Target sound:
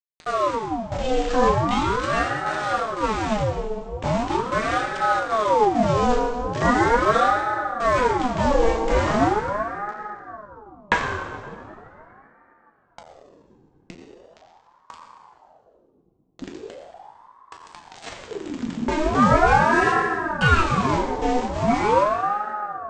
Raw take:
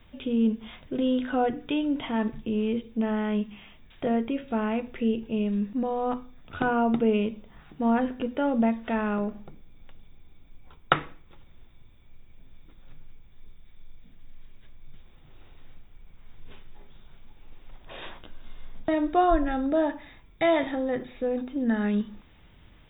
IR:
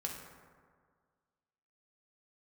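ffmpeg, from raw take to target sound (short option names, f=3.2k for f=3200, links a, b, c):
-filter_complex "[0:a]asubboost=boost=4:cutoff=180,asplit=2[a][b];[b]highpass=f=720:p=1,volume=14dB,asoftclip=type=tanh:threshold=-3dB[c];[a][c]amix=inputs=2:normalize=0,lowpass=f=2k:p=1,volume=-6dB,aresample=16000,aeval=exprs='val(0)*gte(abs(val(0)),0.0422)':c=same,aresample=44100[d];[1:a]atrim=start_sample=2205,asetrate=22050,aresample=44100[e];[d][e]afir=irnorm=-1:irlink=0,aeval=exprs='val(0)*sin(2*PI*640*n/s+640*0.65/0.4*sin(2*PI*0.4*n/s))':c=same"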